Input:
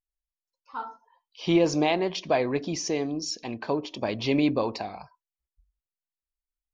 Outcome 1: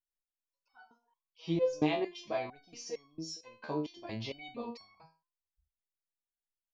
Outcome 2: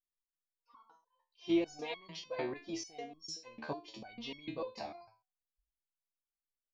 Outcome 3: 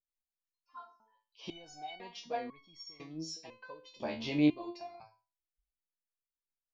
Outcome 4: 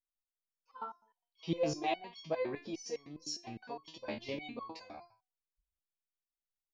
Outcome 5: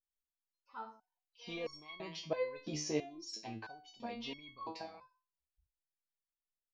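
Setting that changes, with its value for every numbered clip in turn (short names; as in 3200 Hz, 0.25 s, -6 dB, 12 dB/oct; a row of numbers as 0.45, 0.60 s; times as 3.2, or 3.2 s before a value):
stepped resonator, rate: 4.4, 6.7, 2, 9.8, 3 Hz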